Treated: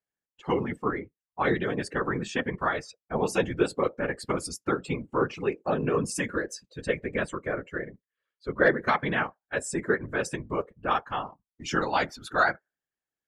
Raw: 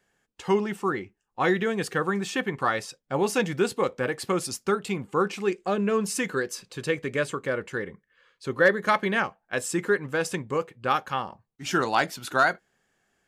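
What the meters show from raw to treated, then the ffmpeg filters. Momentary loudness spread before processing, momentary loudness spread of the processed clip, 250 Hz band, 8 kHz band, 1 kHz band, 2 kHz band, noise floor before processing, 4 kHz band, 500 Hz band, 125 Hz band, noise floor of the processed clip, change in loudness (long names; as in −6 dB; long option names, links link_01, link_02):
10 LU, 11 LU, −2.0 dB, −4.0 dB, −2.0 dB, −2.0 dB, −76 dBFS, −4.0 dB, −2.5 dB, −0.5 dB, below −85 dBFS, −2.0 dB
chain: -af "afftdn=noise_reduction=22:noise_floor=-39,afftfilt=real='hypot(re,im)*cos(2*PI*random(0))':imag='hypot(re,im)*sin(2*PI*random(1))':win_size=512:overlap=0.75,volume=4dB"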